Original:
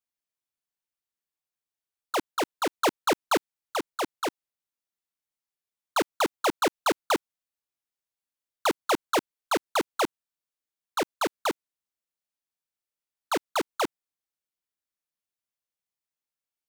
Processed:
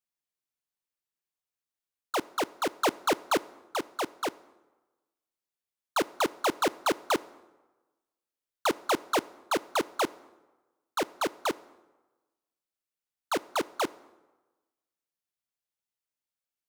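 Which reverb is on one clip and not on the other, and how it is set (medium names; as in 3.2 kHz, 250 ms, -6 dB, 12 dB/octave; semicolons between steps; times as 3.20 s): plate-style reverb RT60 1.2 s, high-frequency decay 0.65×, DRR 19 dB; trim -2 dB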